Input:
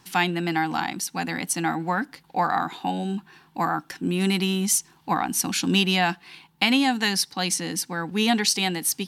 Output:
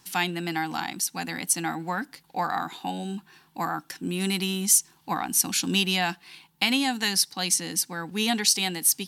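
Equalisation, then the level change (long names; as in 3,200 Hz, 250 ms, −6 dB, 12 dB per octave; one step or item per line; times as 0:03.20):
high-shelf EQ 4,400 Hz +10 dB
−5.0 dB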